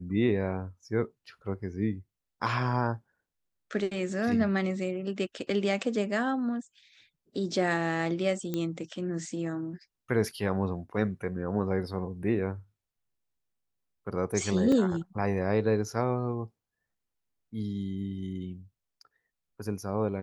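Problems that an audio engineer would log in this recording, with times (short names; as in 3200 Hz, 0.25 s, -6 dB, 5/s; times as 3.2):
8.54 pop -18 dBFS
14.72 gap 3.3 ms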